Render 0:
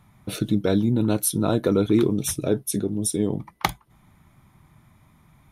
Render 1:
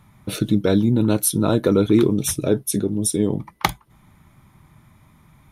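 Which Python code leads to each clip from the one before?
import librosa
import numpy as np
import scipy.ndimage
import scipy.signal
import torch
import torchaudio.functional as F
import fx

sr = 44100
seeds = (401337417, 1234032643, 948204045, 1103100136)

y = fx.notch(x, sr, hz=710.0, q=12.0)
y = y * 10.0 ** (3.5 / 20.0)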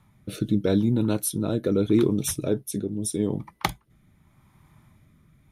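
y = fx.rotary(x, sr, hz=0.8)
y = y * 10.0 ** (-4.0 / 20.0)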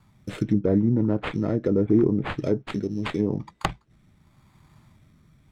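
y = fx.tracing_dist(x, sr, depth_ms=0.36)
y = fx.sample_hold(y, sr, seeds[0], rate_hz=5700.0, jitter_pct=0)
y = fx.env_lowpass_down(y, sr, base_hz=990.0, full_db=-19.0)
y = y * 10.0 ** (1.0 / 20.0)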